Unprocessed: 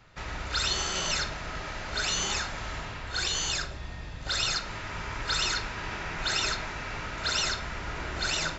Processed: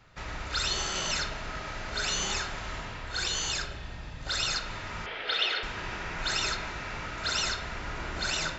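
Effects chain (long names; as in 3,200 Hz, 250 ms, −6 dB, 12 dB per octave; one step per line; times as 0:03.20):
0:05.06–0:05.63: loudspeaker in its box 410–4,000 Hz, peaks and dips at 470 Hz +10 dB, 720 Hz +5 dB, 1,000 Hz −8 dB, 2,100 Hz +3 dB, 3,200 Hz +10 dB
spring reverb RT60 1.5 s, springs 36 ms, chirp 40 ms, DRR 9.5 dB
level −1.5 dB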